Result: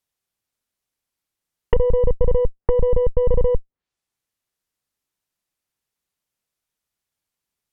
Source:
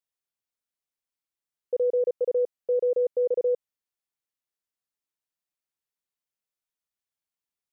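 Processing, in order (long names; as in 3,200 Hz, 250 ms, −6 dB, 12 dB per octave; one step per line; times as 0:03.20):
harmonic generator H 2 −6 dB, 6 −9 dB, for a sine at −19 dBFS
treble cut that deepens with the level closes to 410 Hz, closed at −26.5 dBFS
low-shelf EQ 210 Hz +7.5 dB
level +8 dB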